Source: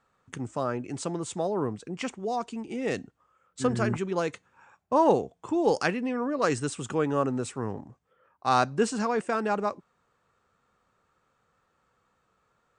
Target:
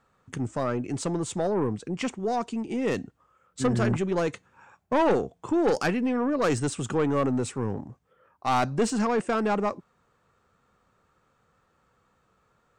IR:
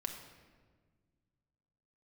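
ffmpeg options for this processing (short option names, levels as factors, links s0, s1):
-af "lowshelf=f=380:g=4.5,aeval=exprs='(tanh(10*val(0)+0.15)-tanh(0.15))/10':c=same,volume=1.33"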